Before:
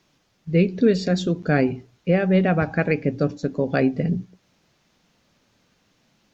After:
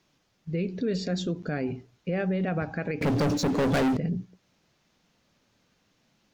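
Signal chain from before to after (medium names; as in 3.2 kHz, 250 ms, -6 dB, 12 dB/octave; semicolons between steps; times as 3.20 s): peak limiter -16 dBFS, peak gain reduction 9.5 dB; 3.01–3.97 s: waveshaping leveller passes 5; trim -4.5 dB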